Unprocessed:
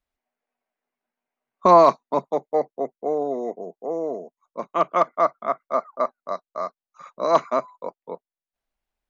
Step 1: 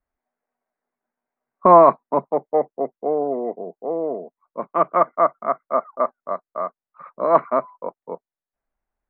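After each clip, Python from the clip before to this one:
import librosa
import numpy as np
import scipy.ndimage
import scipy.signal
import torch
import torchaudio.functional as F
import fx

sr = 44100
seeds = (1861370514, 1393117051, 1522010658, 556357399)

y = scipy.signal.sosfilt(scipy.signal.butter(4, 1900.0, 'lowpass', fs=sr, output='sos'), x)
y = y * librosa.db_to_amplitude(2.5)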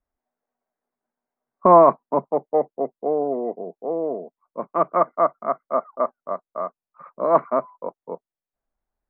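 y = fx.high_shelf(x, sr, hz=2000.0, db=-10.5)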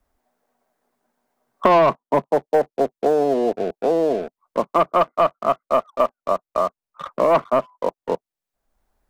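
y = fx.leveller(x, sr, passes=2)
y = fx.band_squash(y, sr, depth_pct=70)
y = y * librosa.db_to_amplitude(-3.0)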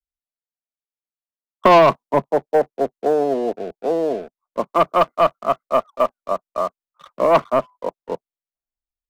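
y = fx.band_widen(x, sr, depth_pct=100)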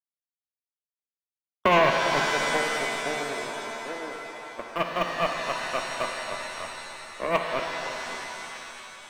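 y = fx.power_curve(x, sr, exponent=2.0)
y = fx.rev_shimmer(y, sr, seeds[0], rt60_s=3.2, semitones=7, shimmer_db=-2, drr_db=3.0)
y = y * librosa.db_to_amplitude(-5.0)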